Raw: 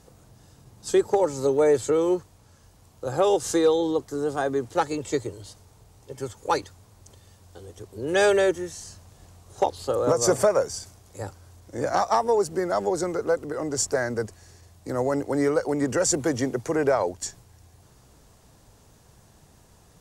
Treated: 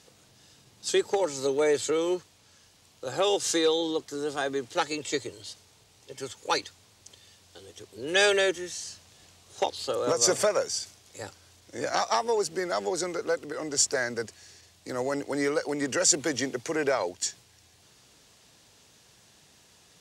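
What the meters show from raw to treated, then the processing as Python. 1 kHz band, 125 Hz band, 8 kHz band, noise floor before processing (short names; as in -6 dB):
-4.5 dB, -9.5 dB, +2.5 dB, -56 dBFS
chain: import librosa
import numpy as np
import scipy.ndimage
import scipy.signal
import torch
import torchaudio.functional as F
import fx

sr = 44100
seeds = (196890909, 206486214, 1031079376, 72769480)

y = fx.weighting(x, sr, curve='D')
y = F.gain(torch.from_numpy(y), -4.5).numpy()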